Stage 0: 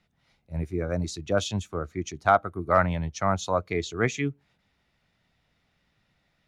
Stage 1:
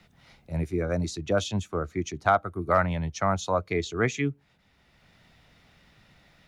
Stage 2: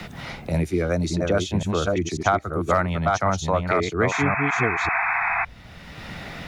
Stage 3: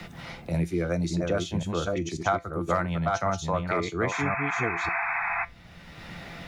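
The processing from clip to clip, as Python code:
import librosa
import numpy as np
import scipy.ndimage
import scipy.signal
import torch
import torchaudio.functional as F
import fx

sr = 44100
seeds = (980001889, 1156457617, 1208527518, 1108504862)

y1 = fx.band_squash(x, sr, depth_pct=40)
y2 = fx.reverse_delay(y1, sr, ms=543, wet_db=-3.5)
y2 = fx.spec_paint(y2, sr, seeds[0], shape='noise', start_s=4.11, length_s=1.34, low_hz=660.0, high_hz=2600.0, level_db=-29.0)
y2 = fx.band_squash(y2, sr, depth_pct=70)
y2 = F.gain(torch.from_numpy(y2), 3.0).numpy()
y3 = fx.comb_fb(y2, sr, f0_hz=170.0, decay_s=0.2, harmonics='all', damping=0.0, mix_pct=60)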